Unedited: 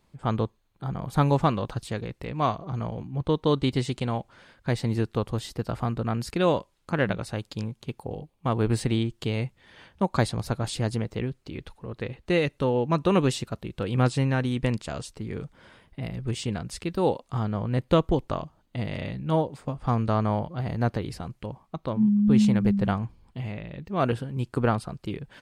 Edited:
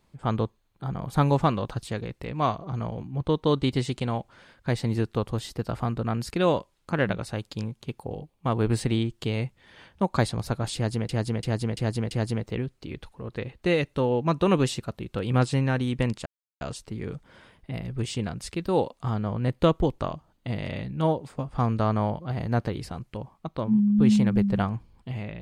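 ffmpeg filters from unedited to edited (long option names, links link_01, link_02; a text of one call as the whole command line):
ffmpeg -i in.wav -filter_complex "[0:a]asplit=6[link_01][link_02][link_03][link_04][link_05][link_06];[link_01]atrim=end=11.092[link_07];[link_02]atrim=start=10.748:end=11.092[link_08];[link_03]atrim=start=10.748:end=11.092[link_09];[link_04]atrim=start=10.748:end=11.092[link_10];[link_05]atrim=start=10.748:end=14.9,asetpts=PTS-STARTPTS,afade=type=out:start_time=4.148:duration=0.004:curve=hsin,apad=pad_dur=0.35[link_11];[link_06]atrim=start=14.9,asetpts=PTS-STARTPTS,afade=type=in:duration=0.004:curve=hsin[link_12];[link_07][link_08]acrossfade=duration=0.004:curve1=hsin:curve2=hsin[link_13];[link_13][link_09]acrossfade=duration=0.004:curve1=hsin:curve2=hsin[link_14];[link_14][link_10]acrossfade=duration=0.004:curve1=hsin:curve2=hsin[link_15];[link_11][link_12]concat=n=2:v=0:a=1[link_16];[link_15][link_16]acrossfade=duration=0.004:curve1=hsin:curve2=hsin" out.wav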